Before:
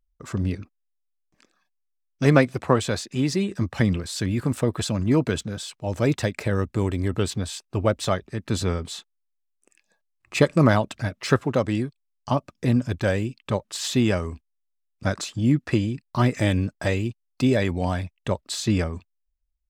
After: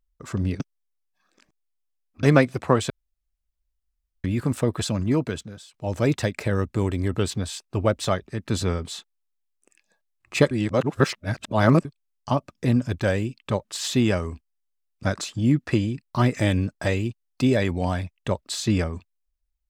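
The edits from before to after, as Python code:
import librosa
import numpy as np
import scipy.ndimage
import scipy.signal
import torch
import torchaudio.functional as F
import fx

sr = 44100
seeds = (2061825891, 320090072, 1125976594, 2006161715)

y = fx.edit(x, sr, fx.reverse_span(start_s=0.6, length_s=1.63),
    fx.room_tone_fill(start_s=2.9, length_s=1.34),
    fx.fade_out_to(start_s=4.93, length_s=0.81, floor_db=-16.5),
    fx.reverse_span(start_s=10.51, length_s=1.34), tone=tone)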